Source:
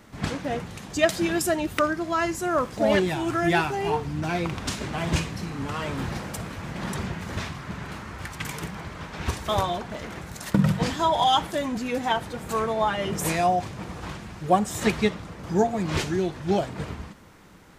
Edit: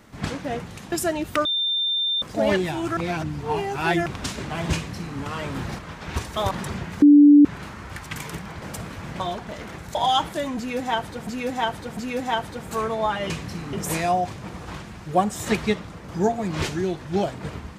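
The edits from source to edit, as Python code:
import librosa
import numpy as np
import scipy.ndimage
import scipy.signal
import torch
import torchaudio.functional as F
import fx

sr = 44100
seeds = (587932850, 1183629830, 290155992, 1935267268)

y = fx.edit(x, sr, fx.cut(start_s=0.92, length_s=0.43),
    fx.bleep(start_s=1.88, length_s=0.77, hz=3590.0, db=-20.5),
    fx.reverse_span(start_s=3.4, length_s=1.09),
    fx.duplicate(start_s=5.18, length_s=0.43, to_s=13.08),
    fx.swap(start_s=6.22, length_s=0.58, other_s=8.91, other_length_s=0.72),
    fx.bleep(start_s=7.31, length_s=0.43, hz=291.0, db=-7.5),
    fx.cut(start_s=10.38, length_s=0.75),
    fx.repeat(start_s=11.75, length_s=0.7, count=3), tone=tone)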